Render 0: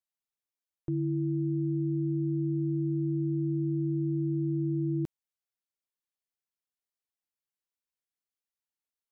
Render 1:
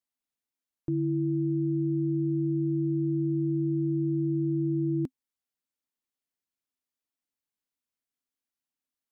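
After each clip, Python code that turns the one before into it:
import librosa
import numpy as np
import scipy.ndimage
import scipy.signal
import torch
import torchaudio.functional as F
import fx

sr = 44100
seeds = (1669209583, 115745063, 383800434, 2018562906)

y = fx.peak_eq(x, sr, hz=260.0, db=11.5, octaves=0.39)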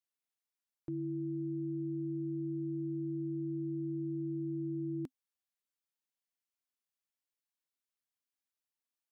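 y = fx.low_shelf(x, sr, hz=420.0, db=-9.0)
y = F.gain(torch.from_numpy(y), -3.5).numpy()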